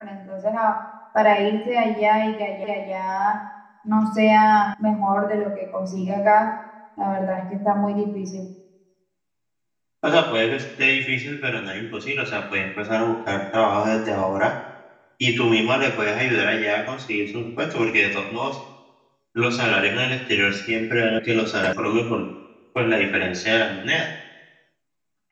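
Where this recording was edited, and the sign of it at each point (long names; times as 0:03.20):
0:02.64: the same again, the last 0.28 s
0:04.74: cut off before it has died away
0:21.19: cut off before it has died away
0:21.73: cut off before it has died away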